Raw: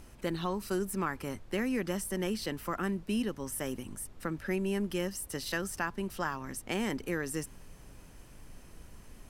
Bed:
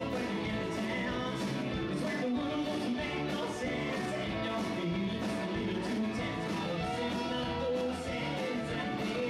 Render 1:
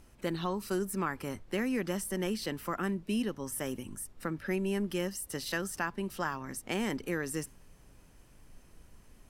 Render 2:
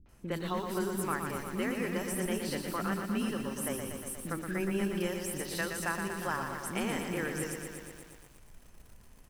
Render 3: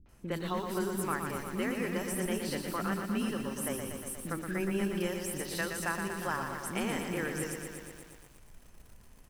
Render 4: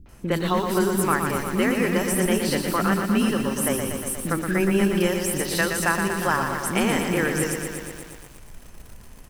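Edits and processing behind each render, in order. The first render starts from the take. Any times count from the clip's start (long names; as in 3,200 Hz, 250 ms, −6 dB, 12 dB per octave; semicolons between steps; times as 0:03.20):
noise reduction from a noise print 6 dB
three-band delay without the direct sound lows, mids, highs 60/90 ms, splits 310/4,100 Hz; feedback echo at a low word length 119 ms, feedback 80%, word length 9 bits, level −6 dB
no processing that can be heard
level +11.5 dB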